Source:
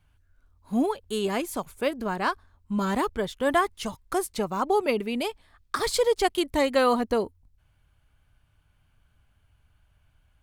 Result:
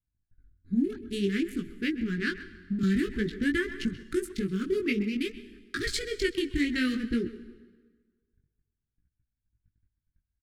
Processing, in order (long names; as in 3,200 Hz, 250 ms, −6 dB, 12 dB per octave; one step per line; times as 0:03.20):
adaptive Wiener filter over 15 samples
low-pass filter 3,300 Hz 6 dB per octave
noise gate −58 dBFS, range −26 dB
elliptic band-stop filter 350–1,700 Hz, stop band 50 dB
downward compressor 6 to 1, threshold −27 dBFS, peak gain reduction 6.5 dB
chorus effect 0.54 Hz, delay 16.5 ms, depth 4.9 ms
far-end echo of a speakerphone 130 ms, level −15 dB
dense smooth reverb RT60 1.5 s, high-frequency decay 0.8×, pre-delay 110 ms, DRR 17 dB
0:02.83–0:04.03: multiband upward and downward compressor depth 70%
level +7.5 dB